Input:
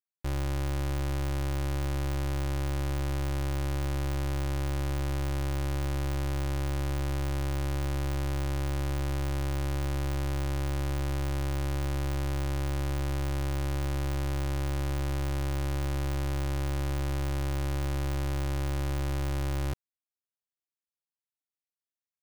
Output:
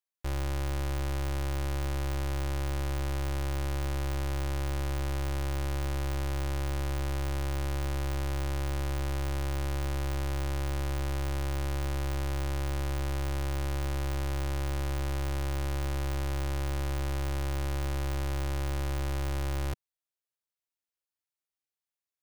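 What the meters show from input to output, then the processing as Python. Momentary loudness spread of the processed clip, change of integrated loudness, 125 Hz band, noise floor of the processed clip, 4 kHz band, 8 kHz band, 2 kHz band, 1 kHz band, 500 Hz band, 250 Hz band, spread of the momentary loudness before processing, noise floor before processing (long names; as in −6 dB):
0 LU, −1.5 dB, −2.0 dB, below −85 dBFS, 0.0 dB, 0.0 dB, 0.0 dB, 0.0 dB, −1.0 dB, −3.0 dB, 0 LU, below −85 dBFS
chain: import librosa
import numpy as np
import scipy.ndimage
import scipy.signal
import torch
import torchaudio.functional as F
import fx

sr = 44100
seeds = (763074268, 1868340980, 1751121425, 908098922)

y = fx.peak_eq(x, sr, hz=190.0, db=-13.0, octaves=0.61)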